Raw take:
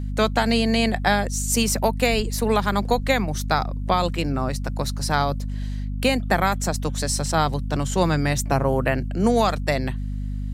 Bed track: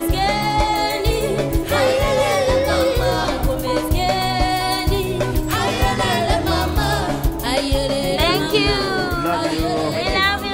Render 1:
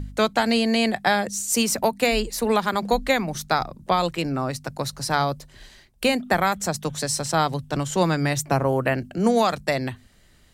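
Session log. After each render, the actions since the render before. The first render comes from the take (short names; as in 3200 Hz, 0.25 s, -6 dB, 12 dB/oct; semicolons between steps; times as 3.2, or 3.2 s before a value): de-hum 50 Hz, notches 5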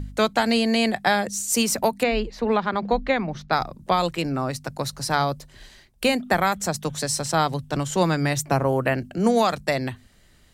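2.03–3.53 air absorption 230 m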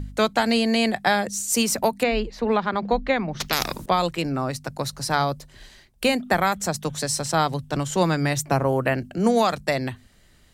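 3.4–3.86 spectral compressor 4:1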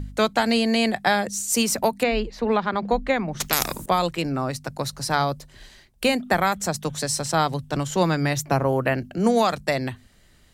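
2.86–3.99 resonant high shelf 6200 Hz +7 dB, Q 1.5; 7.87–9.18 bell 8400 Hz -6.5 dB 0.27 oct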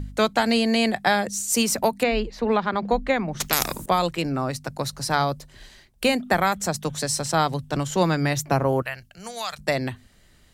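8.82–9.59 passive tone stack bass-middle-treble 10-0-10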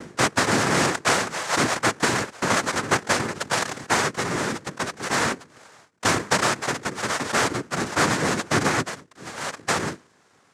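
sample sorter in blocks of 64 samples; noise vocoder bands 3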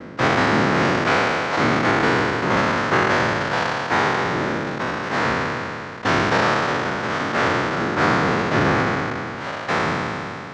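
spectral trails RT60 2.82 s; air absorption 230 m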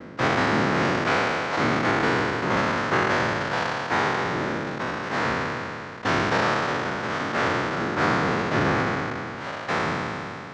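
gain -4 dB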